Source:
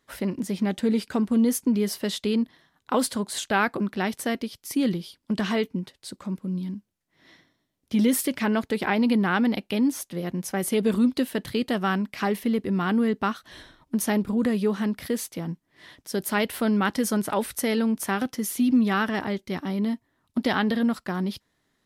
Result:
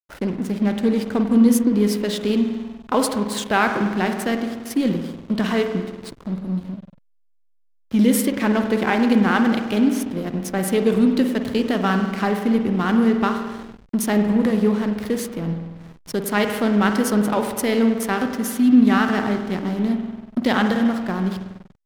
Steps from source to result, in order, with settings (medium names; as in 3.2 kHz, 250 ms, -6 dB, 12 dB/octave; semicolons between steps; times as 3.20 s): spring tank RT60 1.7 s, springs 48 ms, chirp 60 ms, DRR 4 dB; hysteresis with a dead band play -32 dBFS; trim +4 dB